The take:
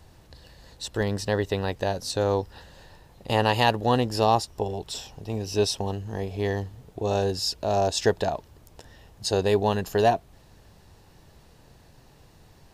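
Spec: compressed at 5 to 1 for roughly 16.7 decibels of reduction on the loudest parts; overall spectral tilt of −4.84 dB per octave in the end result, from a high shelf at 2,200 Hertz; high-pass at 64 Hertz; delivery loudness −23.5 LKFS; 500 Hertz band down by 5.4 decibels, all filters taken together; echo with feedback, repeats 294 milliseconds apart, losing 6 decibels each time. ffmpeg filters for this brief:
ffmpeg -i in.wav -af "highpass=64,equalizer=frequency=500:width_type=o:gain=-6.5,highshelf=frequency=2200:gain=-5.5,acompressor=threshold=-39dB:ratio=5,aecho=1:1:294|588|882|1176|1470|1764:0.501|0.251|0.125|0.0626|0.0313|0.0157,volume=18.5dB" out.wav

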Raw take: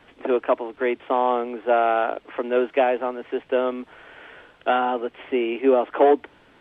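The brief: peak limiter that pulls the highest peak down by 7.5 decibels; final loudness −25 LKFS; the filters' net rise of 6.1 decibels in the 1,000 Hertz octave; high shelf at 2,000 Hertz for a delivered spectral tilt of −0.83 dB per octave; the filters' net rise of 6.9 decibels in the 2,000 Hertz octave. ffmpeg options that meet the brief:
ffmpeg -i in.wav -af "equalizer=frequency=1000:width_type=o:gain=8,highshelf=frequency=2000:gain=-4,equalizer=frequency=2000:width_type=o:gain=8.5,volume=-3dB,alimiter=limit=-13dB:level=0:latency=1" out.wav

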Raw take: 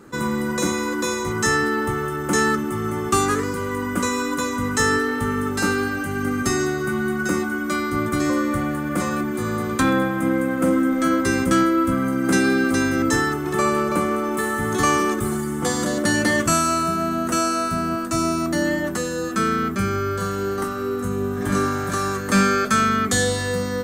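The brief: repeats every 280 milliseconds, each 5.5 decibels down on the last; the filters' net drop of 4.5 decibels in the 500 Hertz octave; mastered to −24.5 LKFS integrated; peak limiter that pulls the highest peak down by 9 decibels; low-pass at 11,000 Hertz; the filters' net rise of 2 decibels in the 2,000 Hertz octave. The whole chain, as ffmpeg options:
ffmpeg -i in.wav -af "lowpass=11000,equalizer=frequency=500:width_type=o:gain=-6.5,equalizer=frequency=2000:width_type=o:gain=3,alimiter=limit=-16dB:level=0:latency=1,aecho=1:1:280|560|840|1120|1400|1680|1960:0.531|0.281|0.149|0.079|0.0419|0.0222|0.0118,volume=-1dB" out.wav

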